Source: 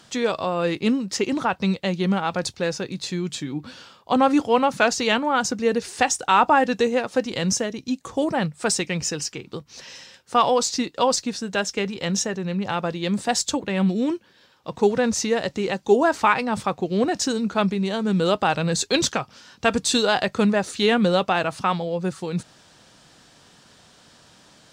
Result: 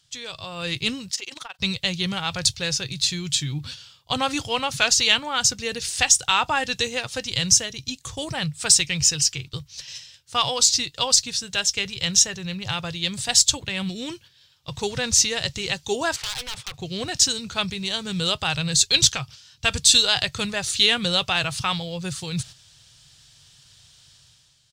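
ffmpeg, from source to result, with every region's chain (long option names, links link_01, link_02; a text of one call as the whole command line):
ffmpeg -i in.wav -filter_complex "[0:a]asettb=1/sr,asplit=3[link_01][link_02][link_03];[link_01]atrim=end=1.104[link_04];[link_02]atrim=start=1.1:end=1.59,asetpts=PTS-STARTPTS,afade=type=in:duration=0.004:curve=qsin,afade=type=out:start_time=0.486:duration=0.004:curve=qsin,highpass=490,tremolo=f=22:d=0.857,acompressor=threshold=-34dB:ratio=2.5:attack=3.2:release=140:knee=1:detection=peak[link_05];[link_03]atrim=start=1.586[link_06];[link_04][link_05]acrossfade=duration=0.004:curve1=hsin:curve2=qsin[link_07];[link_07][link_06]acrossfade=duration=0.004:curve1=qsin:curve2=hsin,asettb=1/sr,asplit=3[link_08][link_09][link_10];[link_08]atrim=end=16.164[link_11];[link_09]atrim=start=16.16:end=16.74,asetpts=PTS-STARTPTS,afade=type=in:duration=0.004:curve=qsin,afade=type=out:start_time=0.576:duration=0.004:curve=qsin,acrossover=split=350 2900:gain=0.141 1 0.224[link_12][link_13][link_14];[link_12][link_13][link_14]amix=inputs=3:normalize=0,acompressor=threshold=-22dB:ratio=10:attack=3.2:release=140:knee=1:detection=peak,aeval=exprs='0.0355*(abs(mod(val(0)/0.0355+3,4)-2)-1)':channel_layout=same[link_15];[link_10]atrim=start=16.736[link_16];[link_11][link_15]acrossfade=duration=0.004:curve1=hsin:curve2=qsin[link_17];[link_17][link_16]acrossfade=duration=0.004:curve1=qsin:curve2=hsin,agate=range=-8dB:threshold=-40dB:ratio=16:detection=peak,firequalizer=gain_entry='entry(130,0);entry(200,-22);entry(3200,-1)':delay=0.05:min_phase=1,dynaudnorm=framelen=110:gausssize=11:maxgain=11.5dB" out.wav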